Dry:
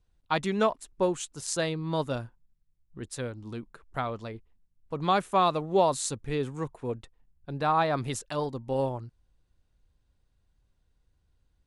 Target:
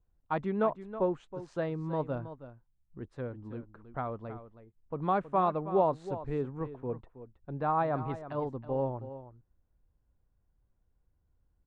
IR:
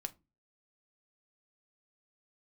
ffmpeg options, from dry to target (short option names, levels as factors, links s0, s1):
-filter_complex "[0:a]lowpass=1300,asplit=2[s0][s1];[s1]aecho=0:1:321:0.224[s2];[s0][s2]amix=inputs=2:normalize=0,volume=0.708"